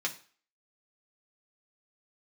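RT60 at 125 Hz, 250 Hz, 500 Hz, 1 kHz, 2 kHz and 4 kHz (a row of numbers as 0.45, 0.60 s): 0.35, 0.35, 0.40, 0.45, 0.45, 0.40 s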